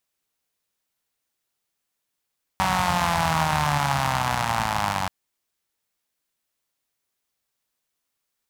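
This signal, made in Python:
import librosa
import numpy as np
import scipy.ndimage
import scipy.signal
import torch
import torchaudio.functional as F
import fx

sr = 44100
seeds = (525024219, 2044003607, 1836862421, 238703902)

y = fx.engine_four_rev(sr, seeds[0], length_s=2.48, rpm=5700, resonances_hz=(83.0, 140.0, 850.0), end_rpm=2800)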